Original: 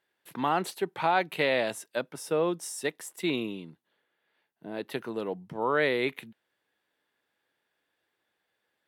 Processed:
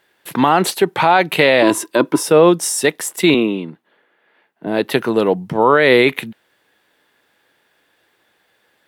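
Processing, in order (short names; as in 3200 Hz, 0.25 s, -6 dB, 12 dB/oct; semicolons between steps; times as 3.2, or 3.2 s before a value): 1.62–2.23 small resonant body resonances 320/1000 Hz, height 17 dB; 3.34–4.67 three-band isolator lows -15 dB, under 160 Hz, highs -13 dB, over 2900 Hz; maximiser +19 dB; gain -1 dB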